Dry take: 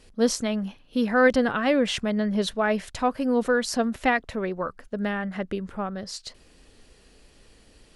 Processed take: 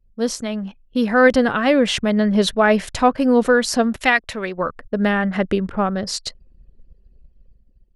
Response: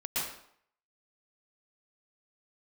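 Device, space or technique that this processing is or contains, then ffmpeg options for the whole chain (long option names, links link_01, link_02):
voice memo with heavy noise removal: -filter_complex "[0:a]asplit=3[link_01][link_02][link_03];[link_01]afade=type=out:start_time=4:duration=0.02[link_04];[link_02]tiltshelf=frequency=1300:gain=-6.5,afade=type=in:start_time=4:duration=0.02,afade=type=out:start_time=4.57:duration=0.02[link_05];[link_03]afade=type=in:start_time=4.57:duration=0.02[link_06];[link_04][link_05][link_06]amix=inputs=3:normalize=0,anlmdn=0.0398,dynaudnorm=framelen=220:gausssize=7:maxgain=10.5dB"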